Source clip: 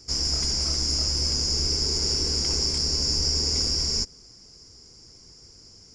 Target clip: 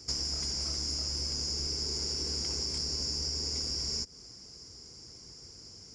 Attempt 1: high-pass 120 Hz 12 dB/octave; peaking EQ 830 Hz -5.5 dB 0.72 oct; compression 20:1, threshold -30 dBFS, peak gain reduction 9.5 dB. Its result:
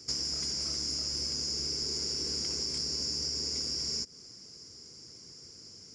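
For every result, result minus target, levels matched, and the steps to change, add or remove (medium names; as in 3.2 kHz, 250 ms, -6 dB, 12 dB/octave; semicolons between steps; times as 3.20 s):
125 Hz band -6.0 dB; 1 kHz band -3.0 dB
change: high-pass 53 Hz 12 dB/octave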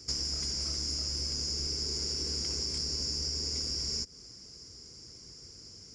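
1 kHz band -3.5 dB
remove: peaking EQ 830 Hz -5.5 dB 0.72 oct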